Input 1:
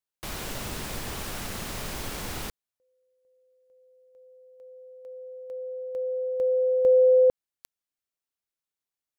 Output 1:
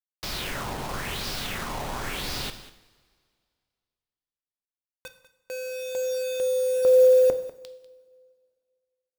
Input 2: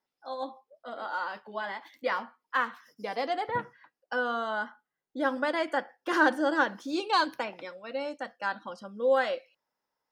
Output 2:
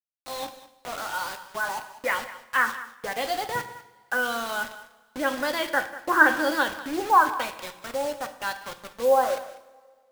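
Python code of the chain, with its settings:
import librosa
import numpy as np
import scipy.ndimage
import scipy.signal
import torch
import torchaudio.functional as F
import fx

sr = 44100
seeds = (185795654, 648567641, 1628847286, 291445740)

p1 = fx.filter_lfo_lowpass(x, sr, shape='sine', hz=0.96, low_hz=820.0, high_hz=5000.0, q=3.3)
p2 = fx.quant_dither(p1, sr, seeds[0], bits=6, dither='none')
p3 = p2 + fx.echo_single(p2, sr, ms=195, db=-16.5, dry=0)
y = fx.rev_double_slope(p3, sr, seeds[1], early_s=0.71, late_s=2.2, knee_db=-17, drr_db=8.5)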